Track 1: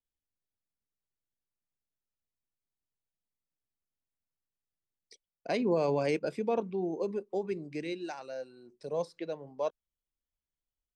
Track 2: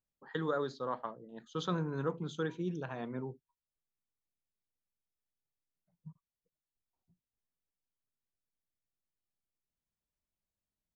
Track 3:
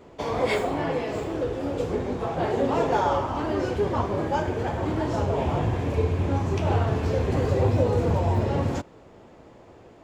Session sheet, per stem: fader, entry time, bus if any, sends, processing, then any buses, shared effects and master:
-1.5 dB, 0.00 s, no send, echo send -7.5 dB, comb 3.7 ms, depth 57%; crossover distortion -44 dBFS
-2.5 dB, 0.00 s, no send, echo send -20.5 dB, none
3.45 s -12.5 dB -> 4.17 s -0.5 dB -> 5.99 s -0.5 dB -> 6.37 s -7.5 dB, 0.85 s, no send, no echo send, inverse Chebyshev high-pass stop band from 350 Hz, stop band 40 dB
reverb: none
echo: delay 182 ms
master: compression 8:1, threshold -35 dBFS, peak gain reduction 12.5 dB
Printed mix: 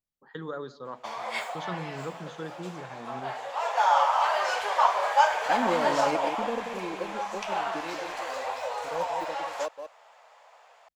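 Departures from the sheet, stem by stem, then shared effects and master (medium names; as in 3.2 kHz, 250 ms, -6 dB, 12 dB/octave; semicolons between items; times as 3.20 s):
stem 3 -12.5 dB -> -3.5 dB; master: missing compression 8:1, threshold -35 dBFS, peak gain reduction 12.5 dB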